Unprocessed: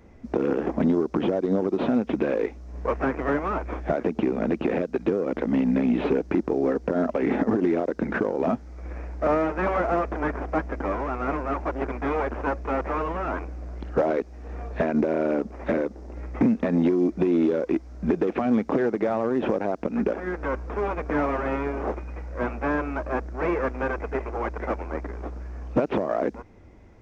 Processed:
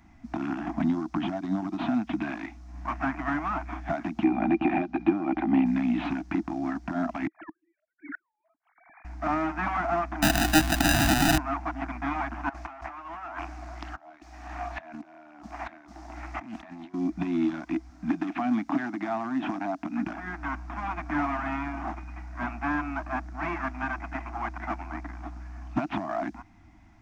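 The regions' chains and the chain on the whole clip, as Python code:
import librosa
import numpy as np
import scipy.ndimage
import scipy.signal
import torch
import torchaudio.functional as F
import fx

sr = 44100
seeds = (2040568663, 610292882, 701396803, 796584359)

y = fx.chain(x, sr, fx.lowpass(hz=3300.0, slope=12),
    fx.small_body(hz=(360.0, 550.0, 770.0, 2400.0), ring_ms=50, db=14), at=(4.24, 5.66))
y = fx.chain(y, sr, fx.sine_speech(),
    fx.peak_eq(hz=340.0, db=-7.5, octaves=0.68),
    fx.gate_flip(shuts_db=-24.0, range_db=-39), at=(7.27, 9.05))
y = fx.chain(y, sr, fx.peak_eq(hz=900.0, db=8.0, octaves=2.8),
    fx.sample_hold(seeds[0], rate_hz=1100.0, jitter_pct=0),
    fx.env_flatten(amount_pct=50), at=(10.22, 11.38))
y = fx.chain(y, sr, fx.low_shelf_res(hz=320.0, db=-9.5, q=1.5),
    fx.over_compress(threshold_db=-36.0, ratio=-1.0),
    fx.doppler_dist(depth_ms=0.29), at=(12.49, 16.94))
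y = fx.chain(y, sr, fx.highpass(hz=200.0, slope=6),
    fx.peak_eq(hz=280.0, db=6.5, octaves=0.27), at=(17.9, 20.07))
y = scipy.signal.sosfilt(scipy.signal.ellip(3, 1.0, 40, [320.0, 680.0], 'bandstop', fs=sr, output='sos'), y)
y = fx.low_shelf(y, sr, hz=240.0, db=-5.0)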